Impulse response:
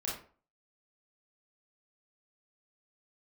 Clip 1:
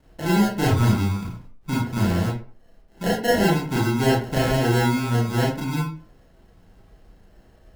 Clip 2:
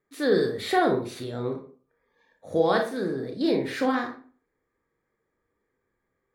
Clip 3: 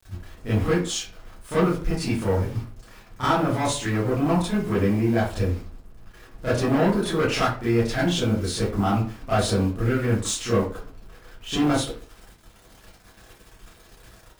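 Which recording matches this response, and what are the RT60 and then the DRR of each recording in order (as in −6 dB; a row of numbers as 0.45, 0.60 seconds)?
1; 0.45, 0.45, 0.45 seconds; −6.0, 2.5, −13.0 decibels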